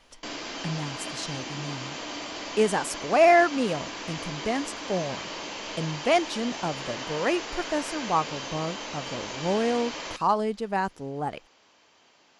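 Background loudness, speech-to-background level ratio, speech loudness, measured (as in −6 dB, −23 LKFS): −35.0 LKFS, 7.5 dB, −27.5 LKFS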